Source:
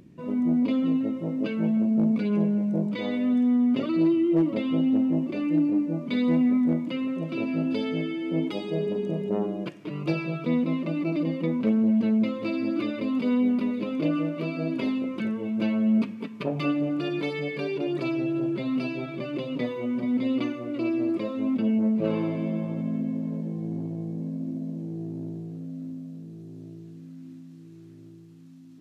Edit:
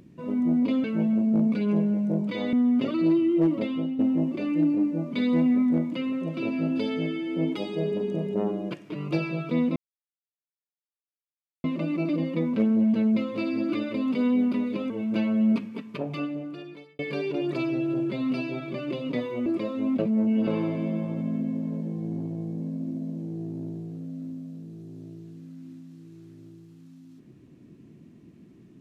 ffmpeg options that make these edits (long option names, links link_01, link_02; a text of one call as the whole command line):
ffmpeg -i in.wav -filter_complex "[0:a]asplit=10[link_01][link_02][link_03][link_04][link_05][link_06][link_07][link_08][link_09][link_10];[link_01]atrim=end=0.842[link_11];[link_02]atrim=start=1.478:end=3.172[link_12];[link_03]atrim=start=3.478:end=4.94,asetpts=PTS-STARTPTS,afade=type=out:start_time=1.062:duration=0.4:silence=0.298538[link_13];[link_04]atrim=start=4.94:end=10.71,asetpts=PTS-STARTPTS,afade=type=in:duration=0.004:curve=hsin:silence=0.298538,afade=type=out:start_time=5.766:duration=0.004:curve=hsin,apad=pad_dur=1.88[link_14];[link_05]atrim=start=10.71:end=13.972,asetpts=PTS-STARTPTS,afade=type=in:duration=0.004:curve=hsin[link_15];[link_06]atrim=start=15.358:end=17.45,asetpts=PTS-STARTPTS,afade=type=out:start_time=0.692:duration=1.4[link_16];[link_07]atrim=start=17.45:end=19.922,asetpts=PTS-STARTPTS,afade=type=in:duration=0.004:curve=hsin[link_17];[link_08]atrim=start=21.058:end=21.592[link_18];[link_09]atrim=start=21.588:end=22.072,asetpts=PTS-STARTPTS,areverse[link_19];[link_10]atrim=start=22.068[link_20];[link_11][link_12]acrossfade=duration=0.004:curve1=hsin:curve2=hsin[link_21];[link_13][link_14][link_15]concat=n=3:v=0:a=1[link_22];[link_21][link_22]acrossfade=duration=0.004:curve1=hsin:curve2=hsin[link_23];[link_16][link_17]concat=n=2:v=0:a=1[link_24];[link_23][link_24]acrossfade=duration=0.004:curve1=hsin:curve2=hsin[link_25];[link_25][link_18]acrossfade=duration=0.004:curve1=hsin:curve2=hsin[link_26];[link_26][link_19]acrossfade=duration=0.004:curve1=hsin:curve2=hsin[link_27];[link_27][link_20]acrossfade=duration=0.004:curve1=hsin:curve2=hsin" out.wav